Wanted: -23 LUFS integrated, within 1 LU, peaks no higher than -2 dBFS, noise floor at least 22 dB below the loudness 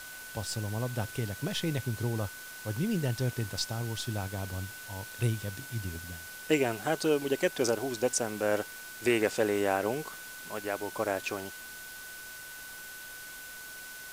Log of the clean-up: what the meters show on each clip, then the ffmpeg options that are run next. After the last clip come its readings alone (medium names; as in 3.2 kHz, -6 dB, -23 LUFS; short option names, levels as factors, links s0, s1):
steady tone 1.5 kHz; tone level -45 dBFS; noise floor -45 dBFS; noise floor target -55 dBFS; loudness -33.0 LUFS; peak level -13.5 dBFS; loudness target -23.0 LUFS
-> -af "bandreject=f=1500:w=30"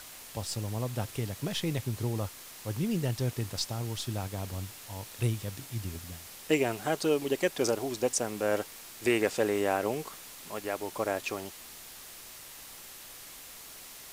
steady tone not found; noise floor -48 dBFS; noise floor target -55 dBFS
-> -af "afftdn=nr=7:nf=-48"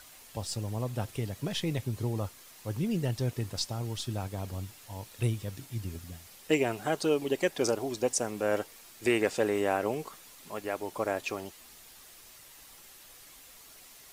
noise floor -53 dBFS; noise floor target -55 dBFS
-> -af "afftdn=nr=6:nf=-53"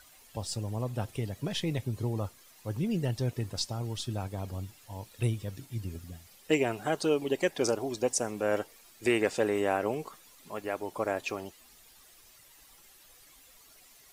noise floor -58 dBFS; loudness -32.5 LUFS; peak level -13.5 dBFS; loudness target -23.0 LUFS
-> -af "volume=2.99"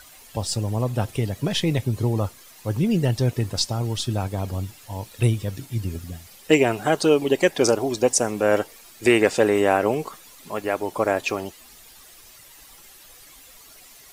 loudness -23.0 LUFS; peak level -4.0 dBFS; noise floor -48 dBFS